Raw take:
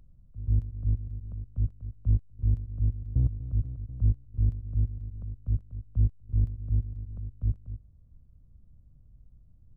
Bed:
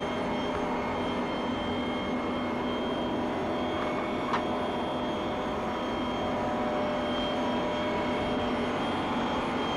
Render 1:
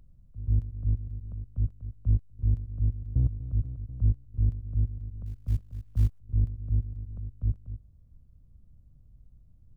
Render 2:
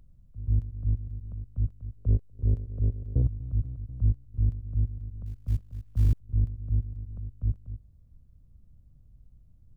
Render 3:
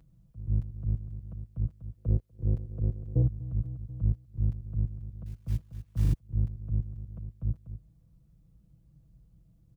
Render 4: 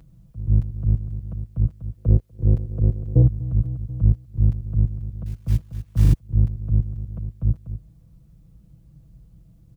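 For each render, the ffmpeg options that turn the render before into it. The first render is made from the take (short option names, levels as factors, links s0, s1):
-filter_complex "[0:a]asettb=1/sr,asplit=3[s0][s1][s2];[s0]atrim=end=5.264[s3];[s1]atrim=start=5.26:end=6.19,asetpts=PTS-STARTPTS,afade=t=in:d=0.004:c=qsin,afade=t=out:st=0.926:d=0.004:c=qsin,acrusher=bits=9:mode=log:mix=0:aa=0.000001[s4];[s2]atrim=start=6.186[s5];[s3][s4]acrossfade=d=0.004:c1=hsin:c2=qsin[s6];[s6][s5]acrossfade=d=0.004:c1=qsin:c2=hsin"
-filter_complex "[0:a]asettb=1/sr,asplit=3[s0][s1][s2];[s0]atrim=end=1.974[s3];[s1]atrim=start=1.97:end=3.22,asetpts=PTS-STARTPTS,afade=t=in:d=0.004:c=qsin,afade=t=out:st=1.246:d=0.004:c=qsin,equalizer=f=460:t=o:w=1:g=14.5[s4];[s2]atrim=start=3.216[s5];[s3][s4]acrossfade=d=0.004:c1=hsin:c2=qsin[s6];[s6][s5]acrossfade=d=0.004:c1=qsin:c2=hsin,asplit=4[s7][s8][s9][s10];[s7]atrim=end=6.052[s11];[s8]atrim=start=6.008:end=6.052[s12];[s9]atrim=start=6.008:end=6.052[s13];[s10]atrim=start=6.128[s14];[s11][s12]acrossfade=d=0.004:c1=hsin:c2=hsin[s15];[s15][s13]acrossfade=d=0.004:c1=hsin:c2=hsin[s16];[s16][s14]acrossfade=d=0.004:c1=hsin:c2=hsin"
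-af "highpass=58,aecho=1:1:6.1:0.91"
-af "volume=3.16"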